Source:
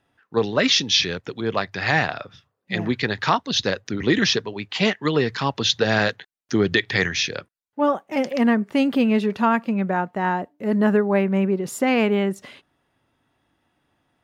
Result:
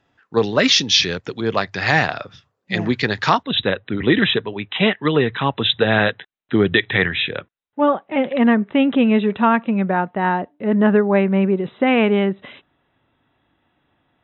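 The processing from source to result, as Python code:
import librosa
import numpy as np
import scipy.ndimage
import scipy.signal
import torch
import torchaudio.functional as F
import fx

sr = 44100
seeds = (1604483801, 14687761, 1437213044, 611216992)

y = fx.brickwall_lowpass(x, sr, high_hz=fx.steps((0.0, 7900.0), (3.42, 4000.0)))
y = y * 10.0 ** (3.5 / 20.0)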